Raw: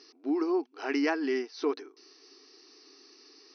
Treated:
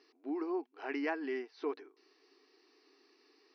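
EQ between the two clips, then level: LPF 2500 Hz 12 dB/oct; low shelf 290 Hz -10 dB; bell 1300 Hz -4.5 dB 0.37 oct; -4.0 dB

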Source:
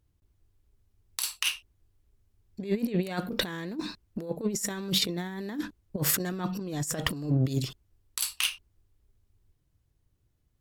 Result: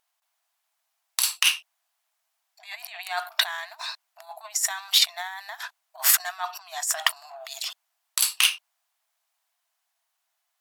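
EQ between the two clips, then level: brick-wall FIR high-pass 630 Hz; +8.0 dB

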